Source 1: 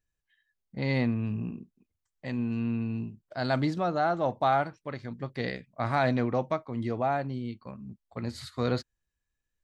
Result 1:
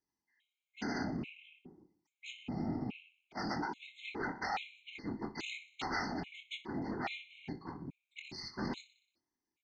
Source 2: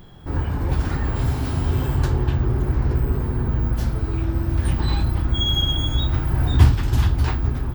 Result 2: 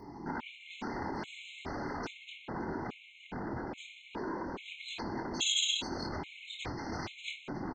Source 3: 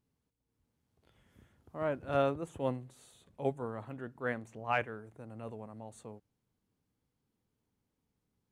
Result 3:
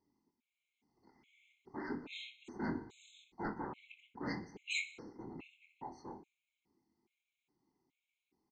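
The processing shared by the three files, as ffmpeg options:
-filter_complex "[0:a]asplit=3[link_01][link_02][link_03];[link_01]bandpass=frequency=300:width_type=q:width=8,volume=0dB[link_04];[link_02]bandpass=frequency=870:width_type=q:width=8,volume=-6dB[link_05];[link_03]bandpass=frequency=2240:width_type=q:width=8,volume=-9dB[link_06];[link_04][link_05][link_06]amix=inputs=3:normalize=0,acompressor=threshold=-47dB:ratio=2.5,aresample=16000,aeval=exprs='0.0282*sin(PI/2*5.01*val(0)/0.0282)':channel_layout=same,aresample=44100,bandreject=frequency=156.3:width_type=h:width=4,bandreject=frequency=312.6:width_type=h:width=4,bandreject=frequency=468.9:width_type=h:width=4,bandreject=frequency=625.2:width_type=h:width=4,bandreject=frequency=781.5:width_type=h:width=4,bandreject=frequency=937.8:width_type=h:width=4,bandreject=frequency=1094.1:width_type=h:width=4,bandreject=frequency=1250.4:width_type=h:width=4,bandreject=frequency=1406.7:width_type=h:width=4,bandreject=frequency=1563:width_type=h:width=4,bandreject=frequency=1719.3:width_type=h:width=4,bandreject=frequency=1875.6:width_type=h:width=4,crystalizer=i=9:c=0,afftfilt=real='hypot(re,im)*cos(2*PI*random(0))':imag='hypot(re,im)*sin(2*PI*random(1))':win_size=512:overlap=0.75,asplit=2[link_07][link_08];[link_08]adelay=24,volume=-7dB[link_09];[link_07][link_09]amix=inputs=2:normalize=0,aecho=1:1:61|122|183|244|305|366:0.168|0.0957|0.0545|0.0311|0.0177|0.0101,afftfilt=real='re*gt(sin(2*PI*1.2*pts/sr)*(1-2*mod(floor(b*sr/1024/2100),2)),0)':imag='im*gt(sin(2*PI*1.2*pts/sr)*(1-2*mod(floor(b*sr/1024/2100),2)),0)':win_size=1024:overlap=0.75"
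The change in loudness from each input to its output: −10.5, −16.0, −7.0 LU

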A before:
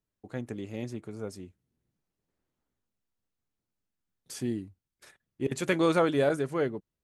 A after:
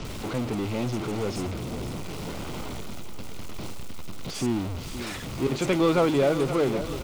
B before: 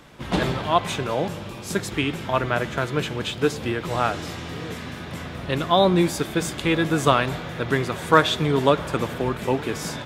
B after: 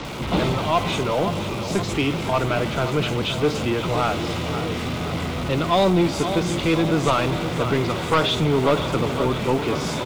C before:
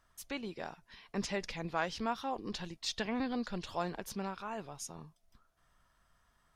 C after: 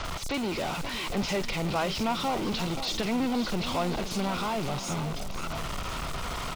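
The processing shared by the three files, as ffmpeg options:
-filter_complex "[0:a]aeval=exprs='val(0)+0.5*0.0398*sgn(val(0))':channel_layout=same,asplit=2[link_01][link_02];[link_02]aecho=0:1:522|1044|1566|2088|2610|3132:0.251|0.136|0.0732|0.0396|0.0214|0.0115[link_03];[link_01][link_03]amix=inputs=2:normalize=0,asoftclip=type=tanh:threshold=-14dB,equalizer=frequency=1700:width_type=o:width=0.24:gain=-11,acrossover=split=240|2300[link_04][link_05][link_06];[link_05]acrusher=bits=4:mode=log:mix=0:aa=0.000001[link_07];[link_04][link_07][link_06]amix=inputs=3:normalize=0,acrossover=split=5700[link_08][link_09];[link_09]adelay=50[link_10];[link_08][link_10]amix=inputs=2:normalize=0,acrossover=split=7200[link_11][link_12];[link_12]acompressor=threshold=-52dB:ratio=4:attack=1:release=60[link_13];[link_11][link_13]amix=inputs=2:normalize=0,volume=2dB"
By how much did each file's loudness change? 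+2.5, +1.5, +8.5 LU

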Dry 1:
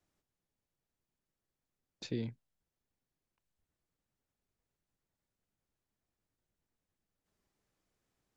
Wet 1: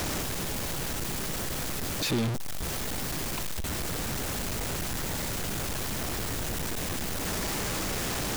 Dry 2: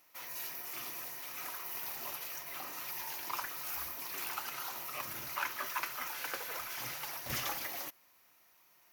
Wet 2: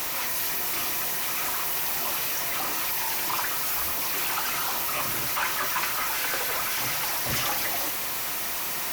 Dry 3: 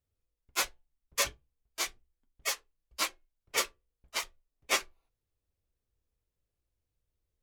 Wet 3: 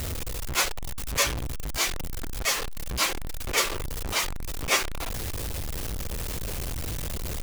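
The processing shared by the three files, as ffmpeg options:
-af "aeval=exprs='val(0)+0.5*0.0473*sgn(val(0))':channel_layout=same,volume=2.5dB"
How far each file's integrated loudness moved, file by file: +10.5, +13.5, +5.0 LU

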